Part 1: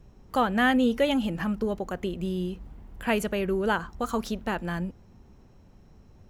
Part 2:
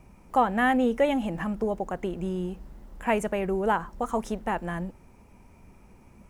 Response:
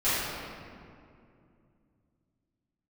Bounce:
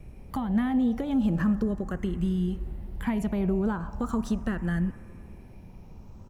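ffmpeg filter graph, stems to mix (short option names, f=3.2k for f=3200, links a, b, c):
-filter_complex "[0:a]acompressor=threshold=-24dB:ratio=6,lowshelf=f=430:g=9.5,acrossover=split=360[a][b];[b]acompressor=threshold=-36dB:ratio=6[c];[a][c]amix=inputs=2:normalize=0,volume=-2dB[d];[1:a]acompressor=threshold=-31dB:ratio=6,asplit=2[e][f];[f]afreqshift=0.39[g];[e][g]amix=inputs=2:normalize=1,adelay=0.9,volume=0dB,asplit=2[h][i];[i]volume=-23dB[j];[2:a]atrim=start_sample=2205[k];[j][k]afir=irnorm=-1:irlink=0[l];[d][h][l]amix=inputs=3:normalize=0"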